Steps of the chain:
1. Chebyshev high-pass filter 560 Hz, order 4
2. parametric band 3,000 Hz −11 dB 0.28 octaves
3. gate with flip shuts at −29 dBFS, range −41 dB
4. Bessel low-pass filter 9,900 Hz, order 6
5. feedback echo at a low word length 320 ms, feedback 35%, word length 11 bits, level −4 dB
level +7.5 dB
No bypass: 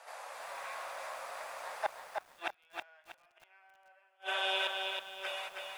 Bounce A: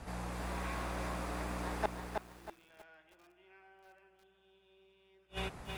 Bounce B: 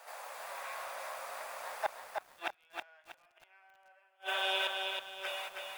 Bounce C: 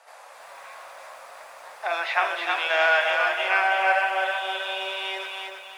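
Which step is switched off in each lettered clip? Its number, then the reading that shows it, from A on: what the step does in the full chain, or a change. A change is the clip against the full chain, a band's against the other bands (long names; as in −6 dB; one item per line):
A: 1, 250 Hz band +17.5 dB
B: 4, 8 kHz band +2.0 dB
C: 3, change in momentary loudness spread +8 LU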